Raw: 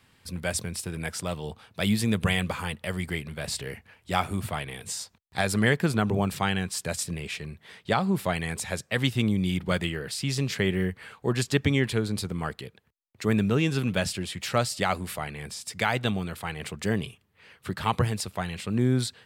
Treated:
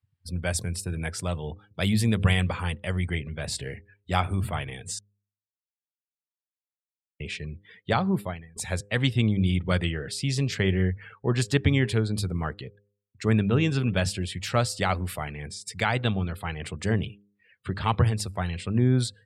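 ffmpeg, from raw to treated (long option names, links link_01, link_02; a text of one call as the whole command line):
ffmpeg -i in.wav -filter_complex "[0:a]asplit=4[link_01][link_02][link_03][link_04];[link_01]atrim=end=4.99,asetpts=PTS-STARTPTS,afade=type=out:start_time=4.986:duration=0.004:curve=hsin[link_05];[link_02]atrim=start=4.99:end=7.2,asetpts=PTS-STARTPTS,volume=0[link_06];[link_03]atrim=start=7.2:end=8.56,asetpts=PTS-STARTPTS,afade=type=in:duration=0.004:curve=hsin,afade=type=out:start_time=0.94:duration=0.42:curve=qua:silence=0.0749894[link_07];[link_04]atrim=start=8.56,asetpts=PTS-STARTPTS,afade=type=in:duration=0.004:curve=hsin:silence=0.0749894[link_08];[link_05][link_06][link_07][link_08]concat=n=4:v=0:a=1,afftdn=noise_reduction=30:noise_floor=-46,equalizer=frequency=92:width=2:gain=8.5,bandreject=frequency=101.7:width_type=h:width=4,bandreject=frequency=203.4:width_type=h:width=4,bandreject=frequency=305.1:width_type=h:width=4,bandreject=frequency=406.8:width_type=h:width=4,bandreject=frequency=508.5:width_type=h:width=4" out.wav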